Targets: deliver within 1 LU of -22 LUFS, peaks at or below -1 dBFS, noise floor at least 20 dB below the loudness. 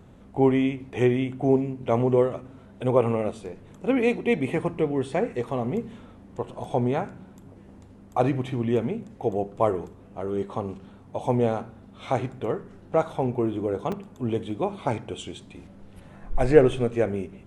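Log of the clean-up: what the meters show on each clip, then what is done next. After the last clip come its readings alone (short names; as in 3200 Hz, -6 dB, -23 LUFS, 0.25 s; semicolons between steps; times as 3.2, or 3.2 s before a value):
dropouts 1; longest dropout 3.9 ms; loudness -26.0 LUFS; peak -2.5 dBFS; loudness target -22.0 LUFS
-> interpolate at 13.92, 3.9 ms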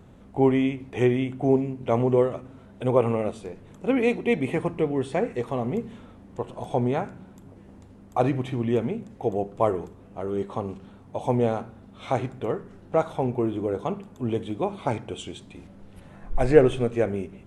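dropouts 0; loudness -26.0 LUFS; peak -2.5 dBFS; loudness target -22.0 LUFS
-> gain +4 dB; limiter -1 dBFS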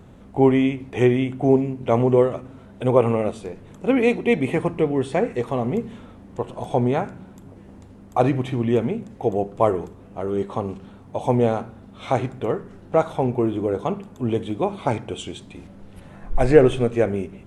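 loudness -22.0 LUFS; peak -1.0 dBFS; noise floor -45 dBFS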